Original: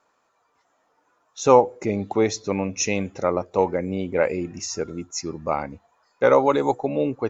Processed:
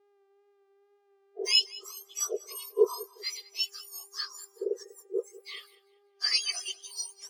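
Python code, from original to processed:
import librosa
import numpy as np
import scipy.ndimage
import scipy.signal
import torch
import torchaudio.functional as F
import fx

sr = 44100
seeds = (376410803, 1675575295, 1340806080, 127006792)

y = fx.octave_mirror(x, sr, pivot_hz=1600.0)
y = fx.dmg_buzz(y, sr, base_hz=400.0, harmonics=32, level_db=-50.0, tilt_db=-7, odd_only=False)
y = fx.wow_flutter(y, sr, seeds[0], rate_hz=2.1, depth_cents=25.0)
y = fx.echo_feedback(y, sr, ms=194, feedback_pct=42, wet_db=-14.0)
y = fx.spectral_expand(y, sr, expansion=1.5)
y = y * 10.0 ** (-4.0 / 20.0)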